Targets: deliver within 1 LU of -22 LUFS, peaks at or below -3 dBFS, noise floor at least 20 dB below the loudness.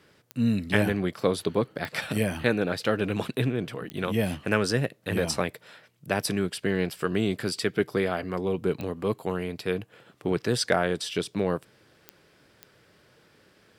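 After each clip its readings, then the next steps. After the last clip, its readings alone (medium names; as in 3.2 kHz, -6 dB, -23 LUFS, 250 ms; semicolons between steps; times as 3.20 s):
clicks found 6; loudness -28.0 LUFS; peak level -6.5 dBFS; loudness target -22.0 LUFS
-> de-click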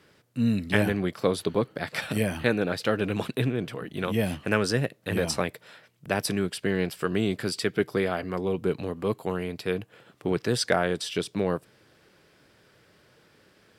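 clicks found 0; loudness -28.0 LUFS; peak level -6.5 dBFS; loudness target -22.0 LUFS
-> trim +6 dB; peak limiter -3 dBFS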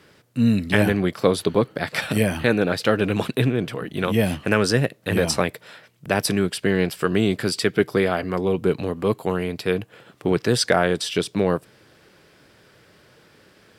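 loudness -22.0 LUFS; peak level -3.0 dBFS; noise floor -56 dBFS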